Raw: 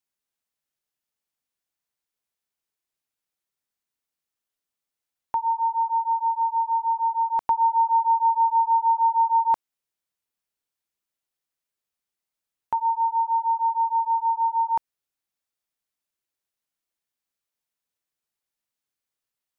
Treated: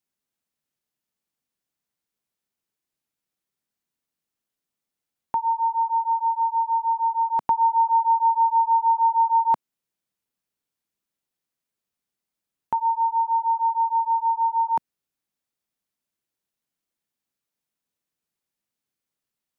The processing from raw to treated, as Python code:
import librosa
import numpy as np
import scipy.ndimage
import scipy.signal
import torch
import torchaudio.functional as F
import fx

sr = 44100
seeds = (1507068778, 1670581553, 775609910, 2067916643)

y = fx.peak_eq(x, sr, hz=200.0, db=8.0, octaves=1.9)